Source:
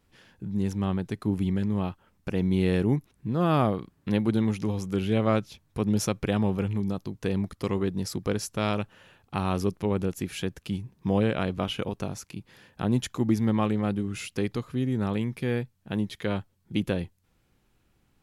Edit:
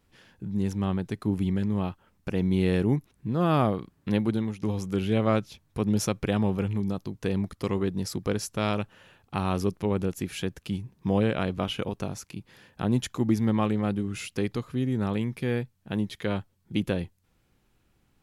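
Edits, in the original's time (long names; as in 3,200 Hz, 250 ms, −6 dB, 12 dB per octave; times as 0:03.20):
0:04.21–0:04.63: fade out, to −11 dB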